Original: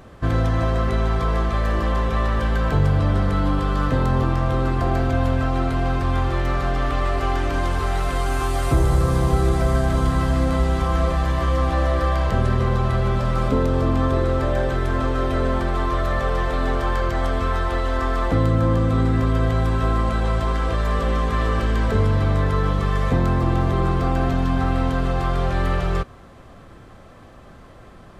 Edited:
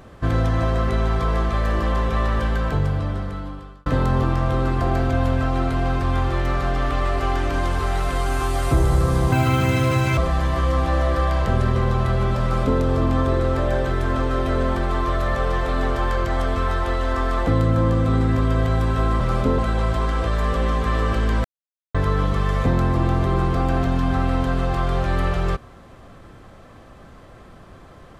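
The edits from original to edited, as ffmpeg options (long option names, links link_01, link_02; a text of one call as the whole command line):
ffmpeg -i in.wav -filter_complex "[0:a]asplit=8[link_01][link_02][link_03][link_04][link_05][link_06][link_07][link_08];[link_01]atrim=end=3.86,asetpts=PTS-STARTPTS,afade=type=out:start_time=2.37:duration=1.49[link_09];[link_02]atrim=start=3.86:end=9.324,asetpts=PTS-STARTPTS,afade=type=in:duration=0.004:curve=hsin[link_10];[link_03]atrim=start=9.32:end=11.02,asetpts=PTS-STARTPTS,asetrate=87759,aresample=44100,atrim=end_sample=37673,asetpts=PTS-STARTPTS[link_11];[link_04]atrim=start=11.016:end=20.052[link_12];[link_05]atrim=start=13.268:end=13.652[link_13];[link_06]atrim=start=20.048:end=21.91,asetpts=PTS-STARTPTS,afade=type=out:start_time=1.858:duration=0.004:curve=hsin[link_14];[link_07]atrim=start=21.91:end=22.41,asetpts=PTS-STARTPTS,volume=0[link_15];[link_08]atrim=start=22.41,asetpts=PTS-STARTPTS,afade=type=in:duration=0.004:curve=hsin[link_16];[link_09][link_10]concat=n=2:v=0:a=1[link_17];[link_17][link_11]acrossfade=duration=0.004:curve1=hsin:curve2=hsin[link_18];[link_18][link_12]acrossfade=duration=0.004:curve1=hsin:curve2=hsin[link_19];[link_19][link_13]acrossfade=duration=0.004:curve1=hsin:curve2=hsin[link_20];[link_14][link_15][link_16]concat=n=3:v=0:a=1[link_21];[link_20][link_21]acrossfade=duration=0.004:curve1=hsin:curve2=hsin" out.wav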